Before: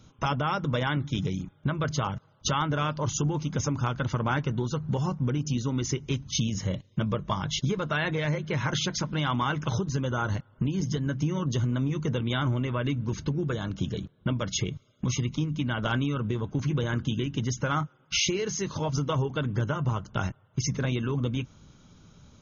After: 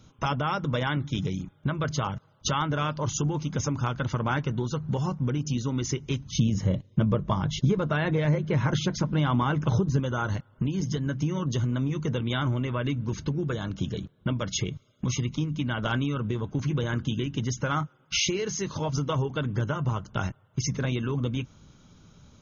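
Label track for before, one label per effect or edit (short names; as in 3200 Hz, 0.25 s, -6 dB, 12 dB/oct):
6.320000	10.000000	tilt shelf lows +5 dB, about 1100 Hz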